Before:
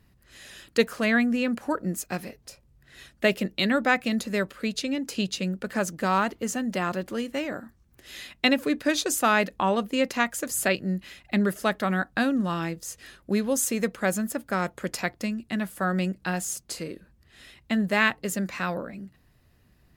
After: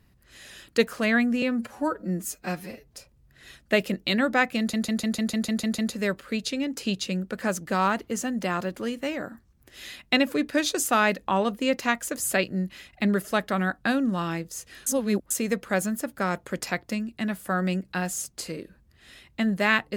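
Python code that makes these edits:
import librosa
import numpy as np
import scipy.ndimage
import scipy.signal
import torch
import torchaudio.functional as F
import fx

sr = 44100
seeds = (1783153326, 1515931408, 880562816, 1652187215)

y = fx.edit(x, sr, fx.stretch_span(start_s=1.42, length_s=0.97, factor=1.5),
    fx.stutter(start_s=4.1, slice_s=0.15, count=9),
    fx.reverse_span(start_s=13.18, length_s=0.44), tone=tone)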